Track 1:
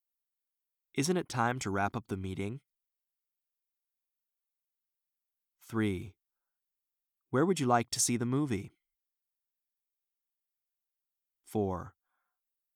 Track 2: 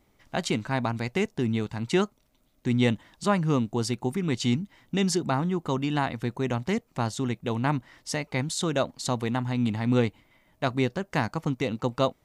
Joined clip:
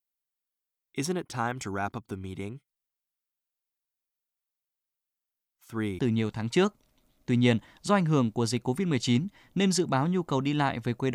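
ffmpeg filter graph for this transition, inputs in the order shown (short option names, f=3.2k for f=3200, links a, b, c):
-filter_complex "[0:a]apad=whole_dur=11.14,atrim=end=11.14,atrim=end=5.992[a];[1:a]atrim=start=1.358:end=6.51[b];[a][b]acrossfade=d=0.004:c1=hsin:c2=hsin"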